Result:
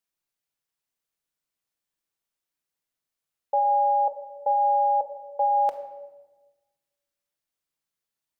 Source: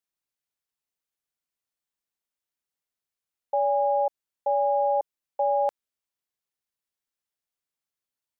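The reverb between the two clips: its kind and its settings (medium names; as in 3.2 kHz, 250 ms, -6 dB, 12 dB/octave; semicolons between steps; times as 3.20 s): simulated room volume 740 m³, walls mixed, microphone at 0.66 m; trim +1.5 dB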